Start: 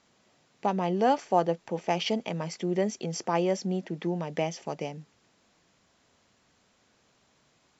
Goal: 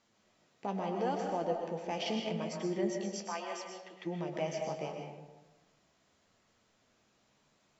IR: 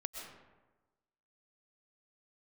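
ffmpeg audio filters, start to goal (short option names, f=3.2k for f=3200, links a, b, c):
-filter_complex "[0:a]asplit=3[a][b][c];[a]afade=t=out:st=2.96:d=0.02[d];[b]highpass=880,afade=t=in:st=2.96:d=0.02,afade=t=out:st=4.05:d=0.02[e];[c]afade=t=in:st=4.05:d=0.02[f];[d][e][f]amix=inputs=3:normalize=0,alimiter=limit=-18.5dB:level=0:latency=1:release=32,flanger=delay=8.6:depth=6.6:regen=44:speed=0.76:shape=sinusoidal[g];[1:a]atrim=start_sample=2205[h];[g][h]afir=irnorm=-1:irlink=0"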